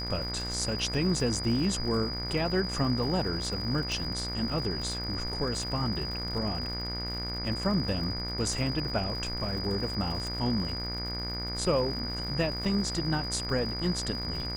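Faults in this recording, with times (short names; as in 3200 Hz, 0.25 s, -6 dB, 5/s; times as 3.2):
buzz 60 Hz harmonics 39 -37 dBFS
crackle 140/s -38 dBFS
tone 4900 Hz -35 dBFS
3.92 pop
10.27 pop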